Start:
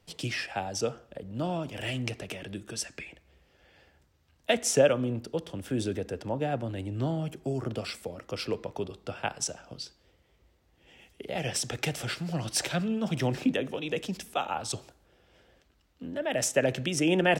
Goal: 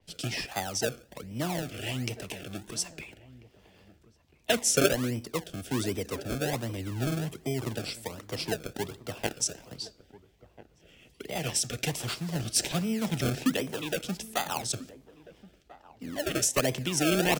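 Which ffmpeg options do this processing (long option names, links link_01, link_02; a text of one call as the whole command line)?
ffmpeg -i in.wav -filter_complex "[0:a]bandreject=frequency=540:width=12,acrossover=split=200|1800|5400[link_01][link_02][link_03][link_04];[link_02]acrusher=samples=31:mix=1:aa=0.000001:lfo=1:lforange=31:lforate=1.3[link_05];[link_01][link_05][link_03][link_04]amix=inputs=4:normalize=0,asplit=2[link_06][link_07];[link_07]adelay=1341,volume=-18dB,highshelf=frequency=4000:gain=-30.2[link_08];[link_06][link_08]amix=inputs=2:normalize=0,adynamicequalizer=threshold=0.00447:dfrequency=4900:dqfactor=0.7:tfrequency=4900:tqfactor=0.7:attack=5:release=100:ratio=0.375:range=2:mode=boostabove:tftype=highshelf" out.wav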